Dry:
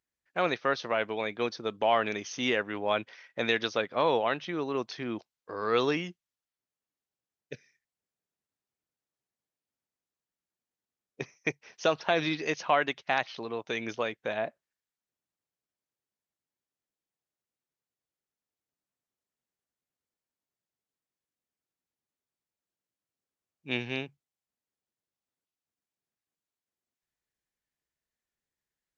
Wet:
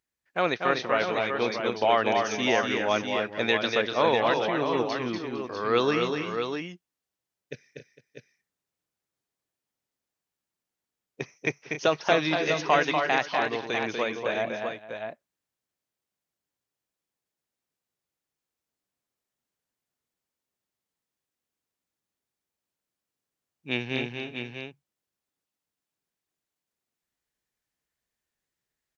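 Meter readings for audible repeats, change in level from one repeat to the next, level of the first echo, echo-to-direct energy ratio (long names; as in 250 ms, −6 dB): 4, repeats not evenly spaced, −5.0 dB, −2.0 dB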